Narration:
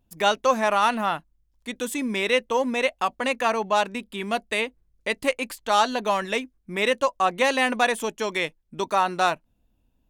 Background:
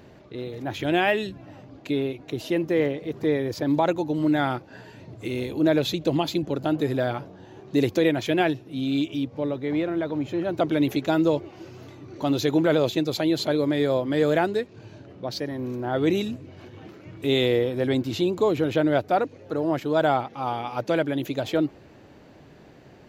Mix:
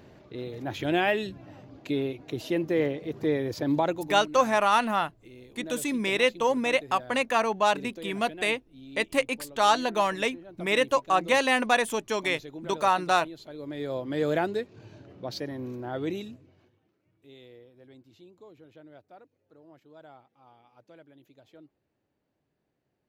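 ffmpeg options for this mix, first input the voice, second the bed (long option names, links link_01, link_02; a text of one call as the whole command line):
ffmpeg -i stem1.wav -i stem2.wav -filter_complex "[0:a]adelay=3900,volume=-1.5dB[link_01];[1:a]volume=12.5dB,afade=type=out:start_time=3.79:duration=0.47:silence=0.141254,afade=type=in:start_time=13.52:duration=0.83:silence=0.16788,afade=type=out:start_time=15.48:duration=1.32:silence=0.0562341[link_02];[link_01][link_02]amix=inputs=2:normalize=0" out.wav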